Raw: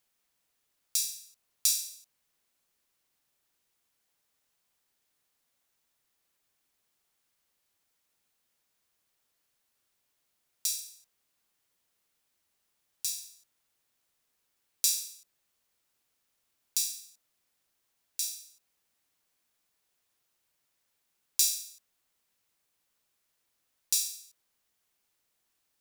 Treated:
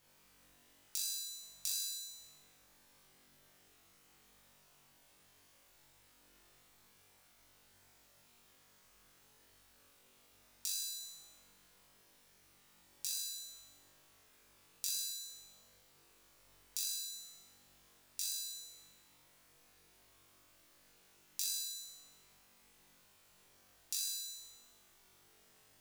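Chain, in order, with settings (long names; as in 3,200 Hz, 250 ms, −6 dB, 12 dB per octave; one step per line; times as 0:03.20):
spectral tilt −1.5 dB per octave
downward compressor 5 to 1, threshold −50 dBFS, peak gain reduction 22 dB
on a send: flutter between parallel walls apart 3.6 metres, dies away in 1.1 s
on the sum: level +8.5 dB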